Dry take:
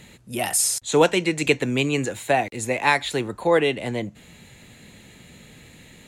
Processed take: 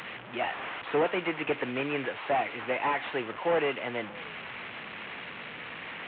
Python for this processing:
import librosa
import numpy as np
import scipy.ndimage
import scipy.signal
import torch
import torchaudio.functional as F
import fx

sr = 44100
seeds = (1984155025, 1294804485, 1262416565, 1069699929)

p1 = fx.delta_mod(x, sr, bps=16000, step_db=-30.0)
p2 = fx.highpass(p1, sr, hz=840.0, slope=6)
y = p2 + fx.echo_single(p2, sr, ms=634, db=-23.5, dry=0)